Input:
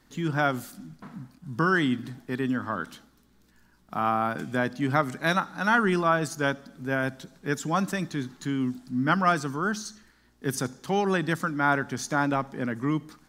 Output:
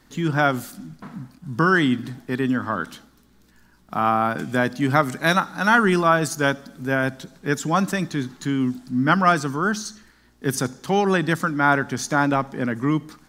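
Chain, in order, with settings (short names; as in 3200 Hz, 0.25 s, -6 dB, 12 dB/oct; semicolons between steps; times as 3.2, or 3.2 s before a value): 4.49–6.92 high shelf 6400 Hz +5 dB; gain +5.5 dB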